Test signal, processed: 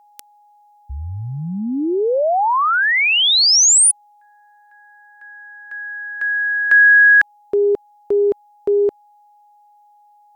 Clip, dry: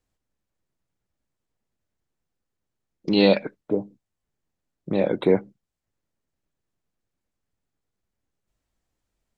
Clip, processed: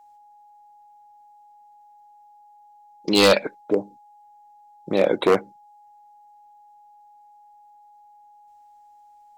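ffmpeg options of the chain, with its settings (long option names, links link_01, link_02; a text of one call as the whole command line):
ffmpeg -i in.wav -af "aeval=exprs='val(0)+0.002*sin(2*PI*830*n/s)':channel_layout=same,aeval=exprs='0.282*(abs(mod(val(0)/0.282+3,4)-2)-1)':channel_layout=same,bass=frequency=250:gain=-11,treble=frequency=4000:gain=5,volume=5dB" out.wav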